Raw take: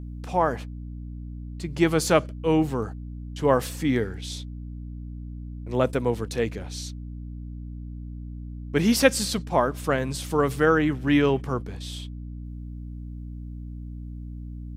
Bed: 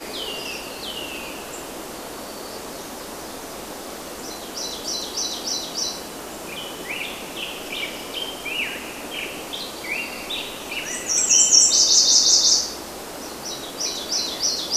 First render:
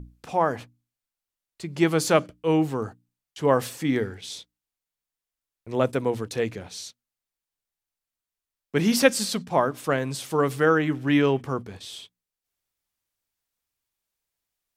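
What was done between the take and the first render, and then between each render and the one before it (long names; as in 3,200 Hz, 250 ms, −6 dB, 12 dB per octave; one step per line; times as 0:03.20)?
mains-hum notches 60/120/180/240/300 Hz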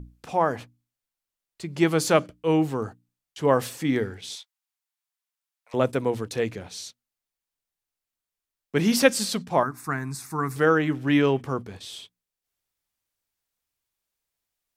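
0:04.35–0:05.74: inverse Chebyshev high-pass filter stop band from 370 Hz
0:09.63–0:10.56: phaser with its sweep stopped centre 1,300 Hz, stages 4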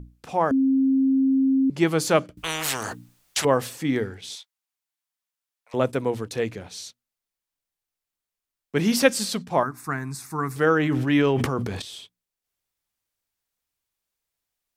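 0:00.51–0:01.70: beep over 267 Hz −16.5 dBFS
0:02.37–0:03.45: every bin compressed towards the loudest bin 10 to 1
0:10.76–0:11.82: level that may fall only so fast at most 29 dB per second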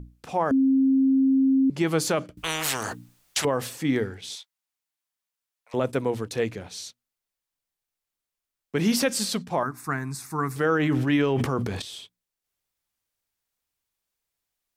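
brickwall limiter −13.5 dBFS, peak gain reduction 8.5 dB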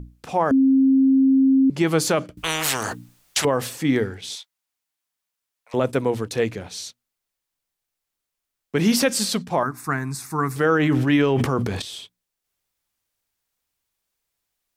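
level +4 dB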